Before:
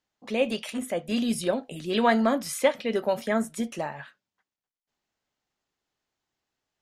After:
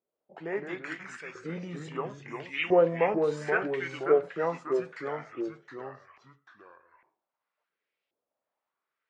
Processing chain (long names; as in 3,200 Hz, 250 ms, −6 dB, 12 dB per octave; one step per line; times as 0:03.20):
speed change −25%
auto-filter band-pass saw up 0.74 Hz 410–2,800 Hz
delay with pitch and tempo change per echo 109 ms, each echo −2 semitones, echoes 2, each echo −6 dB
level +4 dB